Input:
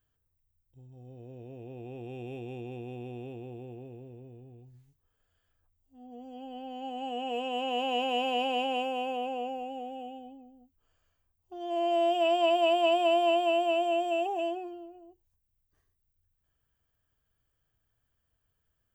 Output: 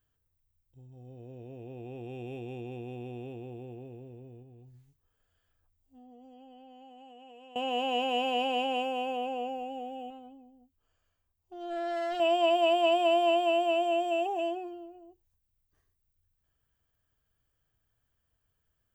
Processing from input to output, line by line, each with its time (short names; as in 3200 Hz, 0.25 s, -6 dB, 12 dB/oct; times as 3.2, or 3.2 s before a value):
4.42–7.56 compressor, threshold -50 dBFS
10.1–12.2 tube stage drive 30 dB, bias 0.55